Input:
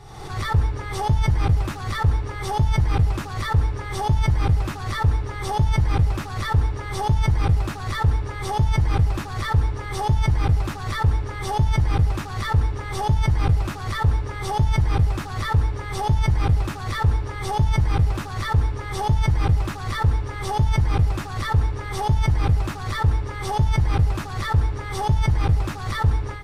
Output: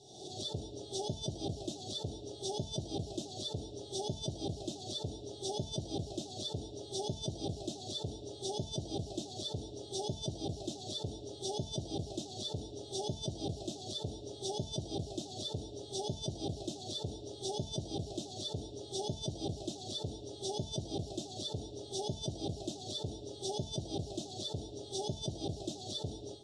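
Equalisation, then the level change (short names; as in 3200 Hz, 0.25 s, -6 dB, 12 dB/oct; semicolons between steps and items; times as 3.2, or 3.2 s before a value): elliptic band-stop 650–3600 Hz, stop band 40 dB; speaker cabinet 370–7600 Hz, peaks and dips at 490 Hz -10 dB, 870 Hz -6 dB, 2200 Hz -9 dB, 4600 Hz -4 dB; 0.0 dB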